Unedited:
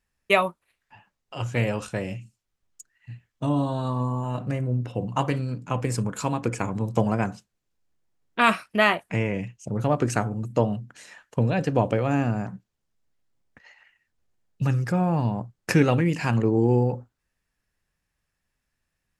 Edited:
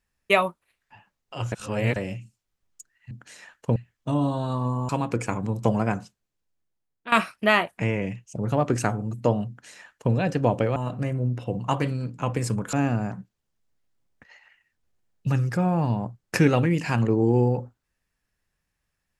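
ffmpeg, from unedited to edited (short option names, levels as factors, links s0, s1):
-filter_complex "[0:a]asplit=9[s0][s1][s2][s3][s4][s5][s6][s7][s8];[s0]atrim=end=1.522[s9];[s1]atrim=start=1.518:end=1.962,asetpts=PTS-STARTPTS,areverse[s10];[s2]atrim=start=1.958:end=3.112[s11];[s3]atrim=start=10.798:end=11.452[s12];[s4]atrim=start=3.108:end=4.242[s13];[s5]atrim=start=6.208:end=8.44,asetpts=PTS-STARTPTS,afade=t=out:st=1.032:d=1.2:silence=0.177828[s14];[s6]atrim=start=8.44:end=12.082,asetpts=PTS-STARTPTS,afade=t=in:d=0.004:c=hsin:silence=0.177828[s15];[s7]atrim=start=4.238:end=6.212[s16];[s8]atrim=start=12.078[s17];[s9][s10]acrossfade=d=0.004:c1=hsin:c2=hsin[s18];[s18][s11]acrossfade=d=0.004:c1=hsin:c2=hsin[s19];[s19][s12]acrossfade=d=0.004:c1=hsin:c2=hsin[s20];[s20][s13]acrossfade=d=0.004:c1=hsin:c2=hsin[s21];[s14][s15]concat=n=2:v=0:a=1[s22];[s21][s22]acrossfade=d=0.004:c1=hsin:c2=hsin[s23];[s23][s16]acrossfade=d=0.004:c1=hsin:c2=hsin[s24];[s24][s17]acrossfade=d=0.004:c1=hsin:c2=hsin"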